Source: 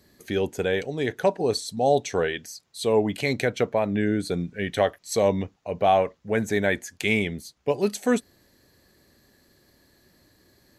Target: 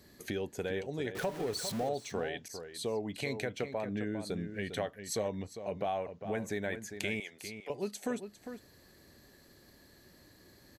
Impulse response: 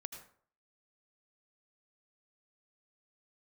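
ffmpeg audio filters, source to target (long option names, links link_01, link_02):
-filter_complex "[0:a]asettb=1/sr,asplit=3[link_01][link_02][link_03];[link_01]atrim=end=1.154[link_04];[link_02]atrim=start=1.15:end=1.89,asetpts=PTS-STARTPTS,afade=type=in:duration=0.004:curve=qsin,afade=type=out:start_time=0.736:duration=0.004:curve=qsin,aeval=exprs='val(0)+0.5*0.0398*sgn(val(0))':channel_layout=same[link_05];[link_03]atrim=start=1.886[link_06];[link_04][link_05]acrossfade=duration=0.004:curve1=hsin:curve2=qsin[link_07];[link_07][link_06]acrossfade=duration=0.004:curve1=qsin:curve2=hsin,acompressor=threshold=-37dB:ratio=3,asettb=1/sr,asplit=3[link_08][link_09][link_10];[link_08]atrim=end=7.204[link_11];[link_09]atrim=start=7.2:end=7.7,asetpts=PTS-STARTPTS,afade=type=in:duration=0.004:curve=qsin,afade=type=out:start_time=0.496:duration=0.004:curve=qsin,highpass=730[link_12];[link_10]atrim=start=7.696[link_13];[link_11][link_12]acrossfade=duration=0.004:curve1=hsin:curve2=qsin[link_14];[link_14][link_13]acrossfade=duration=0.004:curve1=qsin:curve2=hsin,asplit=2[link_15][link_16];[link_16]adelay=402.3,volume=-9dB,highshelf=frequency=4000:gain=-9.05[link_17];[link_15][link_17]amix=inputs=2:normalize=0,asettb=1/sr,asplit=3[link_18][link_19][link_20];[link_18]atrim=end=2.484[link_21];[link_19]atrim=start=2.48:end=3.03,asetpts=PTS-STARTPTS,afade=type=in:duration=0.004:curve=qsin,afade=type=out:start_time=0.546:duration=0.004:curve=qsin,adynamicequalizer=threshold=0.00224:dfrequency=1700:dqfactor=0.7:tfrequency=1700:tqfactor=0.7:attack=5:release=100:ratio=0.375:range=2.5:mode=cutabove:tftype=highshelf[link_22];[link_20]atrim=start=3.026[link_23];[link_21][link_22]acrossfade=duration=0.004:curve1=hsin:curve2=qsin[link_24];[link_24][link_23]acrossfade=duration=0.004:curve1=qsin:curve2=hsin"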